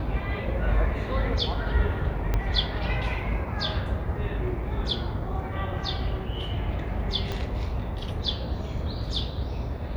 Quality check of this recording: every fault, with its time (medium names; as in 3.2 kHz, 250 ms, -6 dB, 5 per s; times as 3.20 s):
2.34 s: pop -13 dBFS
7.32 s: pop -17 dBFS